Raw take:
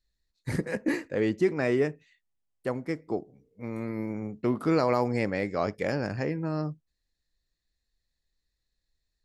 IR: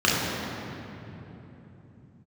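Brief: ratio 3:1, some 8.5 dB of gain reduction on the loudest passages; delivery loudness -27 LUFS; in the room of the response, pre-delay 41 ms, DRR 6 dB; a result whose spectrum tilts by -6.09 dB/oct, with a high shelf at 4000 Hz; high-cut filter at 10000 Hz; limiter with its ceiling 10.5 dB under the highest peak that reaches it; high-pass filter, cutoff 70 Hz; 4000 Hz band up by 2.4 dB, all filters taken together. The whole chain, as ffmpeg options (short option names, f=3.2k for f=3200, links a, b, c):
-filter_complex "[0:a]highpass=70,lowpass=10k,highshelf=f=4k:g=-3.5,equalizer=f=4k:t=o:g=5.5,acompressor=threshold=-31dB:ratio=3,alimiter=level_in=5dB:limit=-24dB:level=0:latency=1,volume=-5dB,asplit=2[a][b];[1:a]atrim=start_sample=2205,adelay=41[c];[b][c]afir=irnorm=-1:irlink=0,volume=-25.5dB[d];[a][d]amix=inputs=2:normalize=0,volume=11.5dB"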